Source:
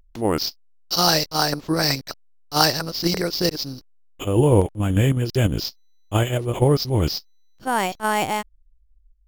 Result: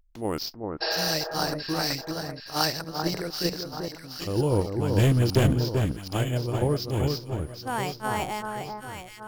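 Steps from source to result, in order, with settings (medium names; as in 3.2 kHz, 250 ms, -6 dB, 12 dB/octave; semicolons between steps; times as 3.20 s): 0.84–1.08 s: spectral replace 330–5500 Hz after; 4.98–5.53 s: waveshaping leveller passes 3; echo whose repeats swap between lows and highs 388 ms, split 1.5 kHz, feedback 67%, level -4 dB; 2.84–3.73 s: three bands expanded up and down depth 40%; trim -8 dB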